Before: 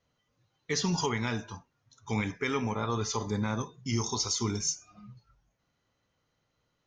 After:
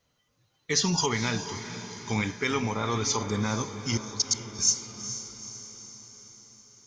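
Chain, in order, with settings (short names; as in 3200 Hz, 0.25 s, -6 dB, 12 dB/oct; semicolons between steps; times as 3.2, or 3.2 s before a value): high shelf 3500 Hz +7.5 dB; 3.97–4.59 level quantiser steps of 24 dB; diffused feedback echo 0.459 s, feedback 57%, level -11 dB; gain +2 dB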